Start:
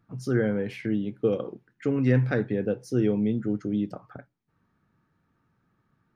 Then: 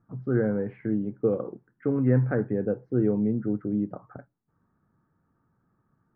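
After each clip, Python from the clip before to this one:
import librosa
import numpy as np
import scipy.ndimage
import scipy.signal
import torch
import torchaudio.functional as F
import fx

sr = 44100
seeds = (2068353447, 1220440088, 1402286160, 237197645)

y = scipy.signal.sosfilt(scipy.signal.butter(4, 1500.0, 'lowpass', fs=sr, output='sos'), x)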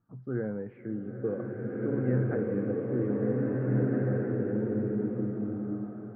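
y = fx.rev_bloom(x, sr, seeds[0], attack_ms=1870, drr_db=-4.5)
y = y * 10.0 ** (-8.0 / 20.0)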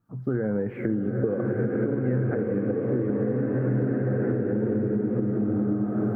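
y = fx.recorder_agc(x, sr, target_db=-19.0, rise_db_per_s=47.0, max_gain_db=30)
y = y * 10.0 ** (1.5 / 20.0)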